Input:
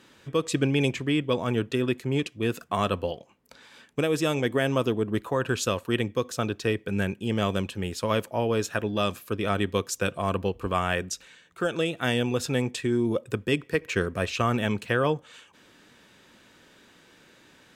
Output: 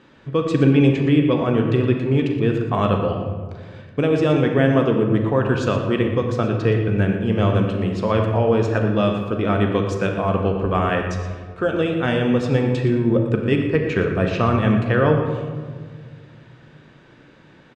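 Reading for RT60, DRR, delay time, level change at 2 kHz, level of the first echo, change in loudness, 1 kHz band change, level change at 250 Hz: 1.7 s, 2.5 dB, 119 ms, +3.5 dB, -11.5 dB, +8.0 dB, +6.0 dB, +9.0 dB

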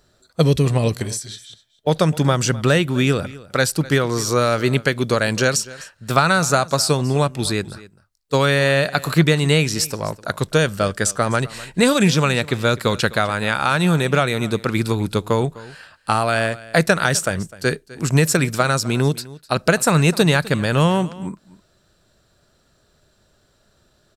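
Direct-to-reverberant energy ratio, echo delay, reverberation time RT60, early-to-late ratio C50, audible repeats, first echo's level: no reverb, 254 ms, no reverb, no reverb, 1, -19.5 dB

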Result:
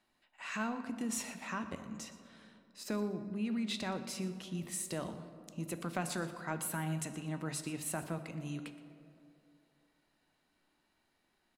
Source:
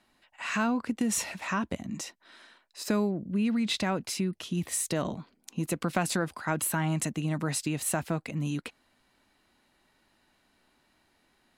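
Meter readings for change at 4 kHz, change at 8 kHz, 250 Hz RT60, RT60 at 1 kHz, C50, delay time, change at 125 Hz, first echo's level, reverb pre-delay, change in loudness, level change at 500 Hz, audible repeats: -8.5 dB, -8.5 dB, 2.8 s, 2.3 s, 10.0 dB, 120 ms, -9.0 dB, -17.5 dB, 5 ms, -8.5 dB, -8.0 dB, 1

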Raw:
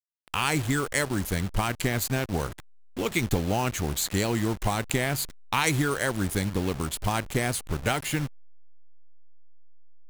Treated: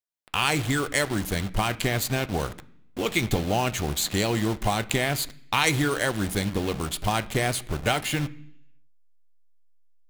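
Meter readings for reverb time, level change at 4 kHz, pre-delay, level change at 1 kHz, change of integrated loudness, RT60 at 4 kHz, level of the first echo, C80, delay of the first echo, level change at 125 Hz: 0.70 s, +4.5 dB, 3 ms, +2.0 dB, +1.5 dB, 0.90 s, no echo, 22.0 dB, no echo, +0.5 dB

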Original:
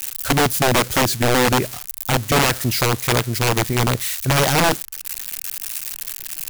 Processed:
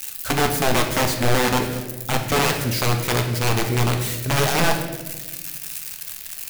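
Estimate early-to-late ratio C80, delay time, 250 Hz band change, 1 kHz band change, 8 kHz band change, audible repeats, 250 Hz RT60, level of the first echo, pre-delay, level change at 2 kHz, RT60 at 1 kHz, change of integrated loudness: 8.5 dB, no echo, -2.5 dB, -2.5 dB, -3.5 dB, no echo, 2.0 s, no echo, 3 ms, -2.5 dB, 1.0 s, -2.5 dB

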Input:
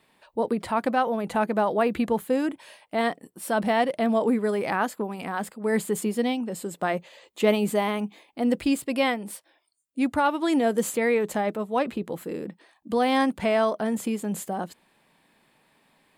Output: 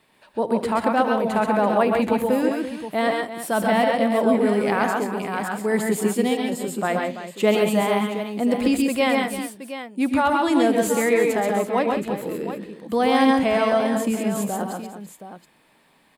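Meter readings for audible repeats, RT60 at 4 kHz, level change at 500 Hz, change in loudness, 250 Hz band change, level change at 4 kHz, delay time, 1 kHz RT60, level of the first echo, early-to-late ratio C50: 5, no reverb, +4.5 dB, +4.5 dB, +4.5 dB, +4.5 dB, 76 ms, no reverb, -17.5 dB, no reverb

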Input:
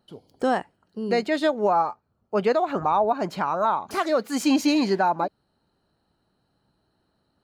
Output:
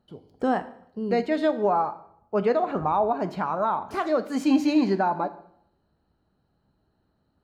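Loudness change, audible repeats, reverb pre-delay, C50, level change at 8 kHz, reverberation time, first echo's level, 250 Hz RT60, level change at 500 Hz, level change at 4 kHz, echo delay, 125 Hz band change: -1.5 dB, no echo, 3 ms, 15.0 dB, -10.5 dB, 0.70 s, no echo, 0.75 s, -1.0 dB, -7.0 dB, no echo, +1.0 dB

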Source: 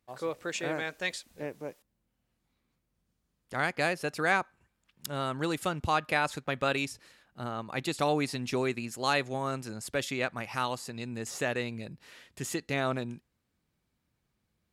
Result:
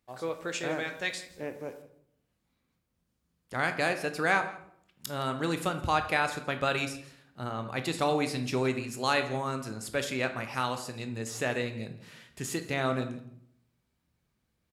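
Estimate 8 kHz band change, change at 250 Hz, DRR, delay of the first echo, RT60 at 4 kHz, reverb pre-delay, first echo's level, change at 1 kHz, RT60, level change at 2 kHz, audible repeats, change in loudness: +0.5 dB, +1.0 dB, 7.0 dB, 166 ms, 0.45 s, 15 ms, -20.0 dB, +1.0 dB, 0.65 s, +1.0 dB, 1, +1.0 dB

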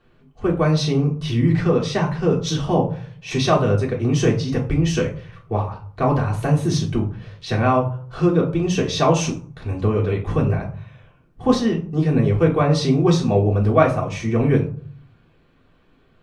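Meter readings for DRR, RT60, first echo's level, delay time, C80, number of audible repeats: -4.0 dB, 0.50 s, no echo, no echo, 14.5 dB, no echo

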